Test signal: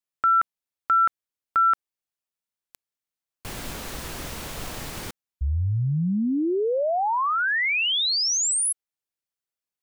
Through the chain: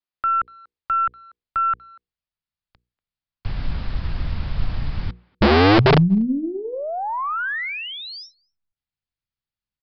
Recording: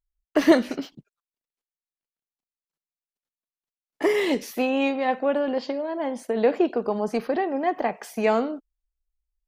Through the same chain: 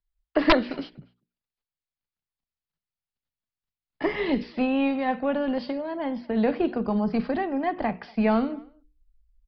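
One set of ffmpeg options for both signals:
ffmpeg -i in.wav -filter_complex "[0:a]bandreject=frequency=60:width_type=h:width=6,bandreject=frequency=120:width_type=h:width=6,bandreject=frequency=180:width_type=h:width=6,bandreject=frequency=240:width_type=h:width=6,bandreject=frequency=300:width_type=h:width=6,bandreject=frequency=360:width_type=h:width=6,bandreject=frequency=420:width_type=h:width=6,bandreject=frequency=480:width_type=h:width=6,asubboost=boost=9:cutoff=140,acrossover=split=200|2000[link_01][link_02][link_03];[link_03]acompressor=threshold=-36dB:ratio=5:attack=0.29:release=70[link_04];[link_01][link_02][link_04]amix=inputs=3:normalize=0,aeval=exprs='0.708*(cos(1*acos(clip(val(0)/0.708,-1,1)))-cos(1*PI/2))+0.00398*(cos(3*acos(clip(val(0)/0.708,-1,1)))-cos(3*PI/2))+0.0126*(cos(6*acos(clip(val(0)/0.708,-1,1)))-cos(6*PI/2))':channel_layout=same,aeval=exprs='(mod(2.82*val(0)+1,2)-1)/2.82':channel_layout=same,asplit=2[link_05][link_06];[link_06]adelay=240,highpass=300,lowpass=3400,asoftclip=type=hard:threshold=-18dB,volume=-25dB[link_07];[link_05][link_07]amix=inputs=2:normalize=0,aresample=11025,aresample=44100" out.wav

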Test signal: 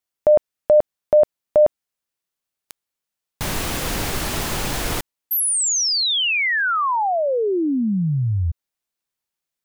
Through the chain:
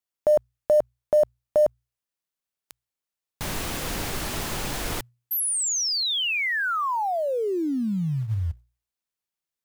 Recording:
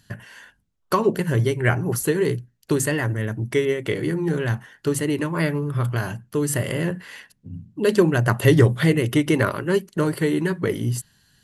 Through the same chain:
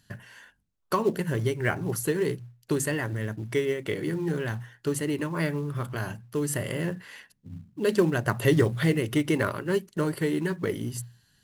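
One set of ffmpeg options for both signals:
ffmpeg -i in.wav -filter_complex "[0:a]bandreject=frequency=60:width_type=h:width=6,bandreject=frequency=120:width_type=h:width=6,asplit=2[link_01][link_02];[link_02]acrusher=bits=4:mode=log:mix=0:aa=0.000001,volume=-7.5dB[link_03];[link_01][link_03]amix=inputs=2:normalize=0,volume=-8.5dB" out.wav

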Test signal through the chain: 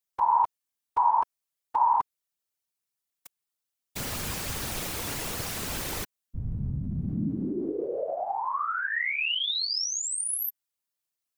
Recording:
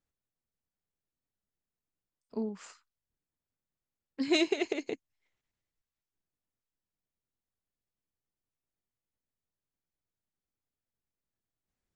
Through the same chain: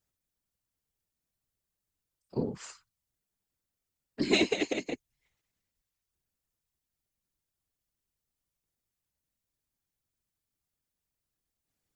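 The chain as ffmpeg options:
ffmpeg -i in.wav -filter_complex "[0:a]acrossover=split=3600[link_01][link_02];[link_02]acompressor=threshold=-38dB:ratio=4:attack=1:release=60[link_03];[link_01][link_03]amix=inputs=2:normalize=0,highshelf=frequency=4100:gain=7,afftfilt=real='hypot(re,im)*cos(2*PI*random(0))':imag='hypot(re,im)*sin(2*PI*random(1))':win_size=512:overlap=0.75,volume=7.5dB" out.wav

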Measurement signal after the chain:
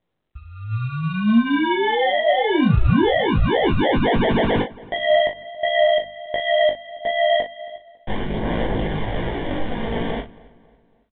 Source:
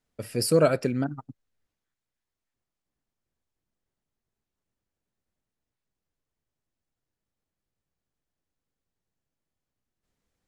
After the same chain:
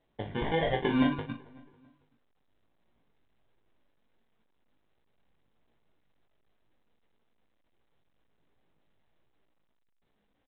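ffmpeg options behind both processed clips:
ffmpeg -i in.wav -filter_complex "[0:a]equalizer=frequency=80:width_type=o:width=0.36:gain=-13,bandreject=frequency=50:width_type=h:width=6,bandreject=frequency=100:width_type=h:width=6,bandreject=frequency=150:width_type=h:width=6,bandreject=frequency=200:width_type=h:width=6,bandreject=frequency=250:width_type=h:width=6,acompressor=threshold=-21dB:ratio=10,alimiter=limit=-20.5dB:level=0:latency=1:release=251,dynaudnorm=framelen=140:gausssize=11:maxgain=9dB,acrusher=samples=34:mix=1:aa=0.000001,aphaser=in_gain=1:out_gain=1:delay=4.5:decay=0.36:speed=0.35:type=sinusoidal,aeval=exprs='0.422*(cos(1*acos(clip(val(0)/0.422,-1,1)))-cos(1*PI/2))+0.00668*(cos(2*acos(clip(val(0)/0.422,-1,1)))-cos(2*PI/2))+0.00335*(cos(4*acos(clip(val(0)/0.422,-1,1)))-cos(4*PI/2))+0.0168*(cos(5*acos(clip(val(0)/0.422,-1,1)))-cos(5*PI/2))+0.0075*(cos(7*acos(clip(val(0)/0.422,-1,1)))-cos(7*PI/2))':channel_layout=same,flanger=delay=17:depth=3.3:speed=1.4,asplit=2[link_01][link_02];[link_02]adelay=39,volume=-8dB[link_03];[link_01][link_03]amix=inputs=2:normalize=0,asplit=2[link_04][link_05];[link_05]adelay=275,lowpass=frequency=2800:poles=1,volume=-22dB,asplit=2[link_06][link_07];[link_07]adelay=275,lowpass=frequency=2800:poles=1,volume=0.46,asplit=2[link_08][link_09];[link_09]adelay=275,lowpass=frequency=2800:poles=1,volume=0.46[link_10];[link_04][link_06][link_08][link_10]amix=inputs=4:normalize=0" -ar 8000 -c:a pcm_mulaw out.wav

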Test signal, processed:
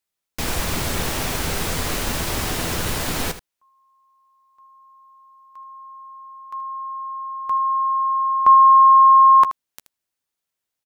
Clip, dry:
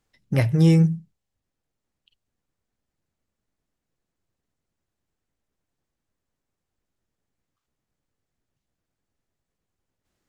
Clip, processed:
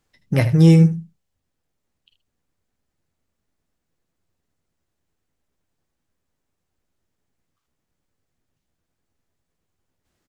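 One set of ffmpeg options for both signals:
ffmpeg -i in.wav -af "aecho=1:1:12|78:0.237|0.224,volume=3.5dB" out.wav

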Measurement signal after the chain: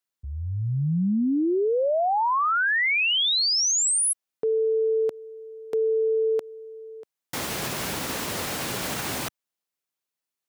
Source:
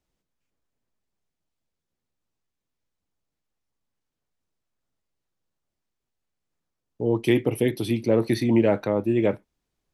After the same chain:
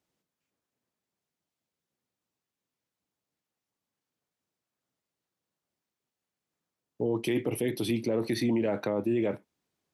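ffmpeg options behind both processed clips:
ffmpeg -i in.wav -af "highpass=130,alimiter=limit=-19.5dB:level=0:latency=1:release=54" out.wav

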